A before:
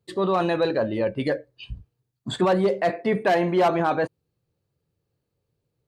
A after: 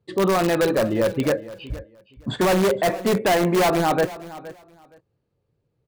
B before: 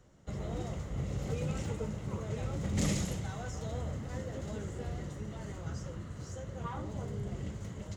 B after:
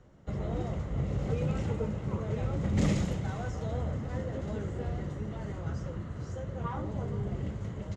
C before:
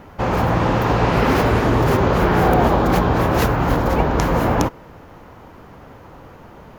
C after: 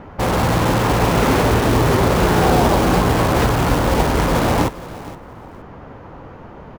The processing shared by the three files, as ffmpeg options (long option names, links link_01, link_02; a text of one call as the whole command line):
ffmpeg -i in.wav -filter_complex "[0:a]aemphasis=mode=reproduction:type=75fm,asplit=2[link_01][link_02];[link_02]aeval=exprs='(mod(6.31*val(0)+1,2)-1)/6.31':channel_layout=same,volume=-6dB[link_03];[link_01][link_03]amix=inputs=2:normalize=0,aecho=1:1:468|936:0.141|0.0268" out.wav